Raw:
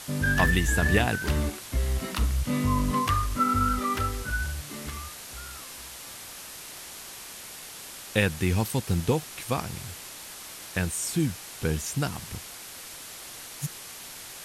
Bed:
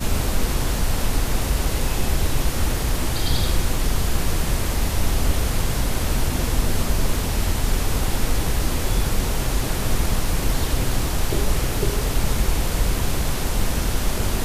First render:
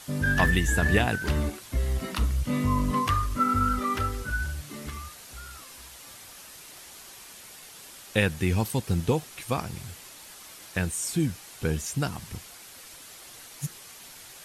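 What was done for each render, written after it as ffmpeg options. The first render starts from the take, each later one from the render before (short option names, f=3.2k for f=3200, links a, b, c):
-af "afftdn=nr=6:nf=-43"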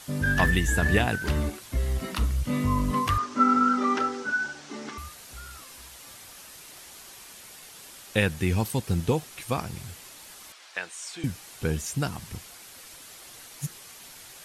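-filter_complex "[0:a]asettb=1/sr,asplit=3[a][b][c];[a]atrim=end=3.184[d];[b]atrim=start=3.18:end=4.98,asetpts=PTS-STARTPTS,afade=t=in:d=0.004:c=qsin,afade=t=out:st=1.796:d=0.004:c=qsin,highpass=f=200:w=0.5412,highpass=f=200:w=1.3066,equalizer=f=250:t=q:w=4:g=6,equalizer=f=410:t=q:w=4:g=6,equalizer=f=830:t=q:w=4:g=10,equalizer=f=1.5k:t=q:w=4:g=5,equalizer=f=5.7k:t=q:w=4:g=4,lowpass=f=7.1k:w=0.5412,lowpass=f=7.1k:w=1.3066[e];[c]atrim=start=4.976[f];[d][e]acrossfade=d=0.004:c1=hsin:c2=qsin[g];[g][f]acrossfade=d=0.004:c1=qsin:c2=hsin,asettb=1/sr,asplit=3[h][i][j];[h]atrim=end=10.524[k];[i]atrim=start=10.52:end=11.24,asetpts=PTS-STARTPTS,afade=t=in:d=0.004:c=qsin,afade=t=out:st=0.716:d=0.004:c=qsin,highpass=720,lowpass=5.4k[l];[j]atrim=start=11.236[m];[k][l]acrossfade=d=0.004:c1=hsin:c2=qsin[n];[n][m]acrossfade=d=0.004:c1=qsin:c2=hsin"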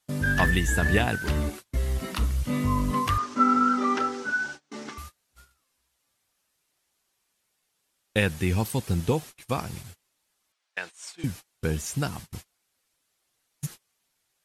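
-af "agate=range=-29dB:threshold=-38dB:ratio=16:detection=peak"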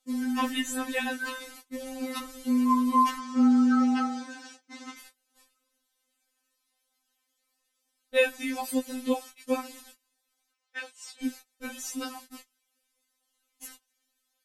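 -af "afftfilt=real='re*3.46*eq(mod(b,12),0)':imag='im*3.46*eq(mod(b,12),0)':win_size=2048:overlap=0.75"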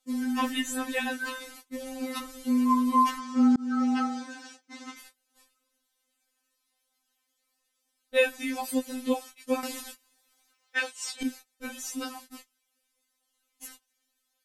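-filter_complex "[0:a]asplit=4[a][b][c][d];[a]atrim=end=3.56,asetpts=PTS-STARTPTS,afade=t=out:st=3.556:d=0.004:c=hsin[e];[b]atrim=start=3.56:end=9.632,asetpts=PTS-STARTPTS,afade=t=in:d=0.5:c=qsin[f];[c]atrim=start=9.628:end=11.232,asetpts=PTS-STARTPTS,volume=9dB[g];[d]atrim=start=11.228[h];[e][f]concat=n=2:v=0:a=1[i];[i][g]acrossfade=d=0.004:c1=hsin:c2=hsin[j];[j][h]acrossfade=d=0.004:c1=hsin:c2=hsin"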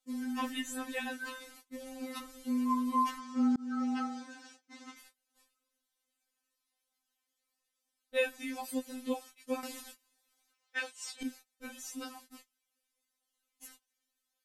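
-af "volume=-7.5dB"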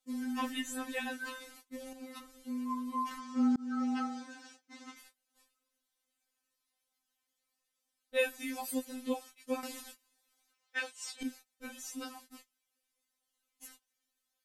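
-filter_complex "[0:a]asettb=1/sr,asplit=3[a][b][c];[a]atrim=end=8.194[d];[b]atrim=start=8.19:end=8.85,asetpts=PTS-STARTPTS,afade=t=in:d=0.004:c=qsin,afade=t=out:st=0.656:d=0.004:c=qsin,highshelf=f=9.1k:g=8.5[e];[c]atrim=start=8.846[f];[d][e]acrossfade=d=0.004:c1=hsin:c2=qsin[g];[g][f]acrossfade=d=0.004:c1=qsin:c2=hsin,asplit=3[h][i][j];[h]atrim=end=1.932[k];[i]atrim=start=1.928:end=3.112,asetpts=PTS-STARTPTS,volume=-6dB[l];[j]atrim=start=3.108[m];[k][l]acrossfade=d=0.004:c1=hsin:c2=hsin[n];[n][m]acrossfade=d=0.004:c1=hsin:c2=hsin"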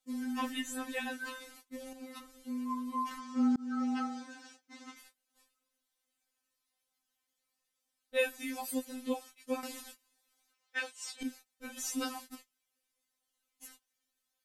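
-filter_complex "[0:a]asplit=3[a][b][c];[a]afade=t=out:st=11.76:d=0.02[d];[b]acontrast=76,afade=t=in:st=11.76:d=0.02,afade=t=out:st=12.34:d=0.02[e];[c]afade=t=in:st=12.34:d=0.02[f];[d][e][f]amix=inputs=3:normalize=0"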